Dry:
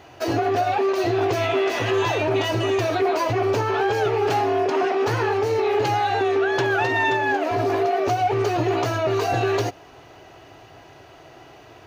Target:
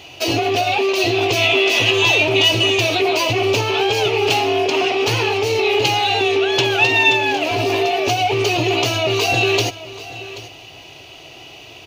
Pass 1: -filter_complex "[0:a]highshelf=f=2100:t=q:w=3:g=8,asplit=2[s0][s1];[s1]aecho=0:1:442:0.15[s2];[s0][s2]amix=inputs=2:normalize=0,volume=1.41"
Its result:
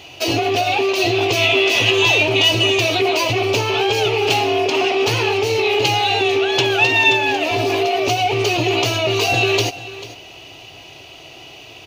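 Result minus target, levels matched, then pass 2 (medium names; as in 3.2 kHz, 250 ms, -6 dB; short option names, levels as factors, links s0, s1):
echo 340 ms early
-filter_complex "[0:a]highshelf=f=2100:t=q:w=3:g=8,asplit=2[s0][s1];[s1]aecho=0:1:782:0.15[s2];[s0][s2]amix=inputs=2:normalize=0,volume=1.41"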